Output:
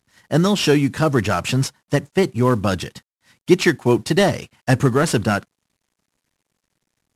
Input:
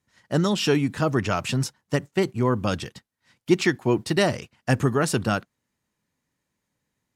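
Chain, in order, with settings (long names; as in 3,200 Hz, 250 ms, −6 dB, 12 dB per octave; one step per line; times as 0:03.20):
variable-slope delta modulation 64 kbit/s
level +5.5 dB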